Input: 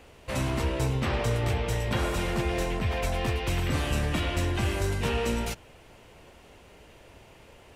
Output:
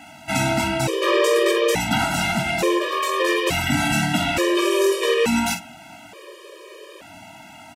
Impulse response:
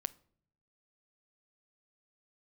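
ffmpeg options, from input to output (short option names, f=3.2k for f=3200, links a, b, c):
-filter_complex "[0:a]highpass=220,asettb=1/sr,asplit=3[a][b][c];[a]atrim=end=1.074[d];[b]atrim=start=1.07:end=2.05,asetpts=PTS-STARTPTS,afade=t=in:d=0.004:c=qsin,afade=t=out:st=0.976:d=0.004:c=qsin,aeval=exprs='0.119*(cos(1*acos(clip(val(0)/0.119,-1,1)))-cos(1*PI/2))+0.0075*(cos(5*acos(clip(val(0)/0.119,-1,1)))-cos(5*PI/2))':c=same[e];[c]atrim=start=2.046[f];[d][e]acrossfade=d=0.004:c1=hsin:c2=qsin[g];[g][f]acrossfade=d=0.004:c1=qsin:c2=hsin,asettb=1/sr,asplit=3[h][i][j];[h]atrim=end=2.794[k];[i]atrim=start=2.79:end=3.2,asetpts=PTS-STARTPTS,afade=t=in:d=0.004:c=qsin,afade=t=out:st=0.406:d=0.004:c=qsin,aeval=exprs='val(0)*sin(2*PI*400*n/s)':c=same[l];[j]atrim=start=3.196[m];[k][l]acrossfade=d=0.004:c1=hsin:c2=qsin[n];[n][m]acrossfade=d=0.004:c1=qsin:c2=hsin,aecho=1:1:21|49|60:0.447|0.299|0.168[o];[1:a]atrim=start_sample=2205,asetrate=57330,aresample=44100[p];[o][p]afir=irnorm=-1:irlink=0,alimiter=level_in=24dB:limit=-1dB:release=50:level=0:latency=1,afftfilt=real='re*gt(sin(2*PI*0.57*pts/sr)*(1-2*mod(floor(b*sr/1024/320),2)),0)':imag='im*gt(sin(2*PI*0.57*pts/sr)*(1-2*mod(floor(b*sr/1024/320),2)),0)':win_size=1024:overlap=0.75,volume=-6.5dB"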